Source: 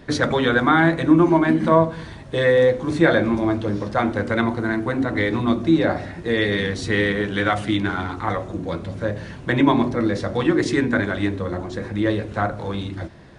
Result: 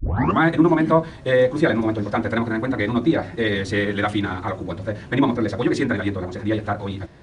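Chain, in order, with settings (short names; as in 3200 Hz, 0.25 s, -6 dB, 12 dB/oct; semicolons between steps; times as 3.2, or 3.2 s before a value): tape start at the beginning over 0.75 s; time stretch by phase-locked vocoder 0.54×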